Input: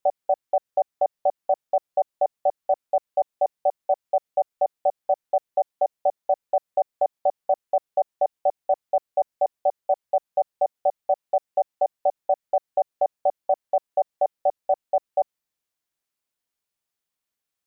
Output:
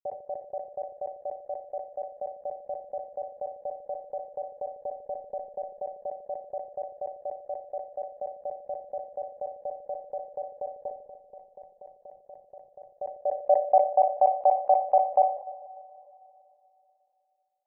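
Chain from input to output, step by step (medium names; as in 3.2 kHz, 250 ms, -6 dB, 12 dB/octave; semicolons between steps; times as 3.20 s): gate with hold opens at -46 dBFS; peak limiter -20.5 dBFS, peak gain reduction 8.5 dB; low-pass sweep 330 Hz -> 940 Hz, 13.05–13.89 s; 10.88–12.91 s: compressor with a negative ratio -49 dBFS, ratio -1; static phaser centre 720 Hz, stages 4; feedback echo behind a low-pass 149 ms, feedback 59%, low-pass 610 Hz, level -13 dB; Schroeder reverb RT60 3.3 s, combs from 27 ms, DRR 17 dB; decay stretcher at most 120 dB/s; trim +4.5 dB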